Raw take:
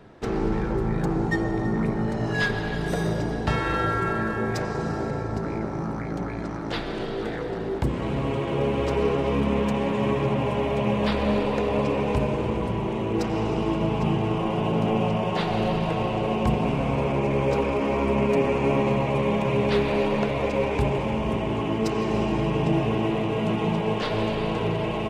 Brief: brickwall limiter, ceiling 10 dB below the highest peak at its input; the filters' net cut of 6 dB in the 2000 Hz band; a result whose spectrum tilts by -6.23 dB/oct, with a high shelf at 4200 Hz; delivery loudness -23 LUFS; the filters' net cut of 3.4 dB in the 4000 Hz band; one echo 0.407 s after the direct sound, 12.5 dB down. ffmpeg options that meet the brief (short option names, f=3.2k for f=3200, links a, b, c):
-af "equalizer=f=2k:t=o:g=-8,equalizer=f=4k:t=o:g=-4,highshelf=f=4.2k:g=5.5,alimiter=limit=-20dB:level=0:latency=1,aecho=1:1:407:0.237,volume=5.5dB"